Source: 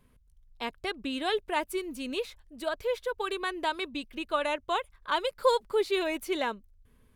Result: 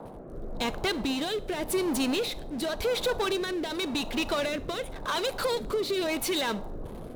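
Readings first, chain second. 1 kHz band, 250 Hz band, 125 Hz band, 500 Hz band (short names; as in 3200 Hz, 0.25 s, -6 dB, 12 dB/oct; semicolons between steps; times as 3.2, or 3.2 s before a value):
-3.0 dB, +6.0 dB, n/a, +1.0 dB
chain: gate -59 dBFS, range -42 dB; bell 3900 Hz +6.5 dB 0.35 oct; in parallel at +1 dB: level quantiser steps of 12 dB; on the sum: limiter -20 dBFS, peak gain reduction 11.5 dB; compressor, threshold -29 dBFS, peak gain reduction 6 dB; power-law curve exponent 0.5; band noise 110–900 Hz -42 dBFS; rotary speaker horn 0.9 Hz; Schroeder reverb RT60 0.48 s, combs from 26 ms, DRR 18 dB; gain +1.5 dB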